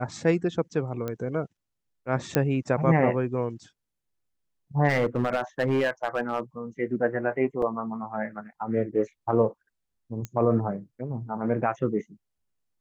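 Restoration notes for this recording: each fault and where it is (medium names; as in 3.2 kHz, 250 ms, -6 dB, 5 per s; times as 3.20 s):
1.08 s: pop -18 dBFS
2.35 s: pop -7 dBFS
4.88–6.40 s: clipped -19 dBFS
7.62 s: dropout 3.4 ms
10.25 s: pop -19 dBFS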